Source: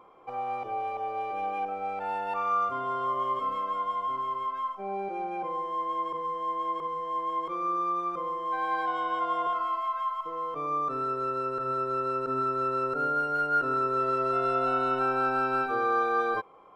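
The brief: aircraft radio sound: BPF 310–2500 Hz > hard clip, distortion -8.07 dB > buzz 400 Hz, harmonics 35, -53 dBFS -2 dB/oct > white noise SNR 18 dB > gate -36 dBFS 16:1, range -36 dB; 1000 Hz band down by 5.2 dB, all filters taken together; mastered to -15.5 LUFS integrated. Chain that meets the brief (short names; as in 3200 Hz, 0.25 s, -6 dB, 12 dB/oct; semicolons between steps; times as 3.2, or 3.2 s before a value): BPF 310–2500 Hz; bell 1000 Hz -6.5 dB; hard clip -34.5 dBFS; buzz 400 Hz, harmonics 35, -53 dBFS -2 dB/oct; white noise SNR 18 dB; gate -36 dBFS 16:1, range -36 dB; gain +22.5 dB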